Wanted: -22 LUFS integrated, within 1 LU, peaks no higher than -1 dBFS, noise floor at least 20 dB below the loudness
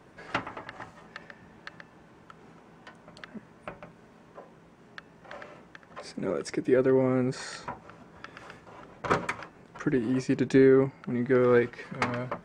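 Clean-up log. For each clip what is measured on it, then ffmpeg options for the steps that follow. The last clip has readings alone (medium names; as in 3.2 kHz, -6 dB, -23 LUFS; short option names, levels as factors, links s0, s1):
loudness -27.0 LUFS; peak level -10.5 dBFS; loudness target -22.0 LUFS
-> -af "volume=1.78"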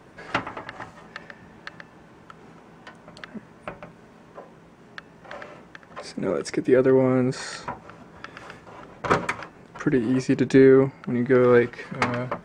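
loudness -22.0 LUFS; peak level -5.5 dBFS; noise floor -51 dBFS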